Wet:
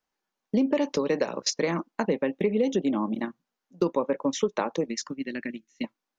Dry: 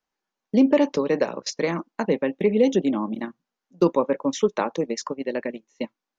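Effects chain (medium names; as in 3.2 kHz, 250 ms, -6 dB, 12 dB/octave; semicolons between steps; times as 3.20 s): 0.75–1.54 s: treble shelf 3.8 kHz +6.5 dB; compression 4:1, threshold -21 dBFS, peak gain reduction 8 dB; 4.88–5.84 s: high-order bell 680 Hz -15.5 dB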